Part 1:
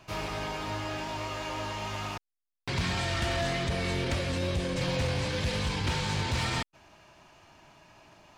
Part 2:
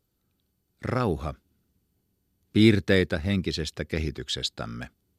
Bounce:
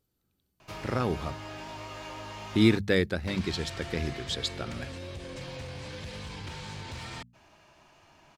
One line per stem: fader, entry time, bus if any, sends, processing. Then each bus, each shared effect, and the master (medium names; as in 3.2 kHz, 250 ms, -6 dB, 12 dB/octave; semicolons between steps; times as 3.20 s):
-2.5 dB, 0.60 s, no send, hum notches 60/120/180/240 Hz; compression, threshold -35 dBFS, peak gain reduction 9 dB
-3.0 dB, 0.00 s, no send, hum notches 50/100/150/200 Hz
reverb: none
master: none